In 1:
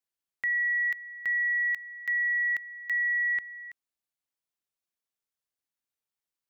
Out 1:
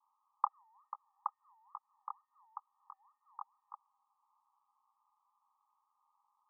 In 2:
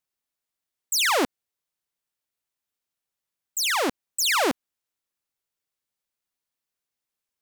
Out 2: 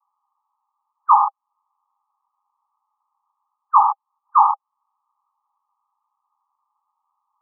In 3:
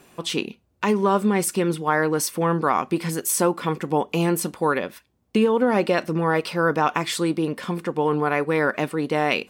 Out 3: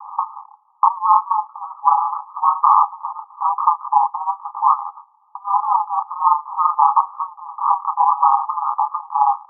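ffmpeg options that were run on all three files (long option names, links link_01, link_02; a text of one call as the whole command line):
ffmpeg -i in.wav -af "flanger=delay=18.5:depth=7.9:speed=1.1,acompressor=threshold=-39dB:ratio=4,aeval=exprs='val(0)*sin(2*PI*92*n/s)':channel_layout=same,asuperpass=centerf=1000:order=20:qfactor=2.2,alimiter=level_in=36dB:limit=-1dB:release=50:level=0:latency=1,volume=-1dB" out.wav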